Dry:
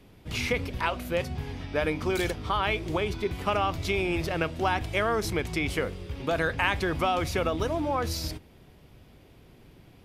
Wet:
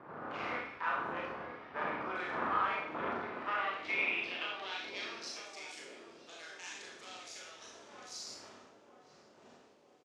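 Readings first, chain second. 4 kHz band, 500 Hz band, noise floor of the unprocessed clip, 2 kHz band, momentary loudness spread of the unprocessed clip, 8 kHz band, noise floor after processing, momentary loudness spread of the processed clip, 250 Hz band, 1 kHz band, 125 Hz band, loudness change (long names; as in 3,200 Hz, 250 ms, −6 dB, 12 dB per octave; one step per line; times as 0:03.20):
−9.0 dB, −15.5 dB, −55 dBFS, −7.0 dB, 6 LU, −8.5 dB, −63 dBFS, 17 LU, −16.5 dB, −7.5 dB, −26.0 dB, −9.5 dB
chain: wind on the microphone 310 Hz −27 dBFS
tube saturation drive 22 dB, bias 0.75
high-pass filter 60 Hz
high-frequency loss of the air 75 metres
double-tracking delay 39 ms −13 dB
four-comb reverb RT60 0.65 s, combs from 26 ms, DRR −2.5 dB
band-pass filter sweep 1,300 Hz → 6,900 Hz, 0:03.14–0:05.66
on a send: feedback echo with a band-pass in the loop 947 ms, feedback 64%, band-pass 390 Hz, level −5.5 dB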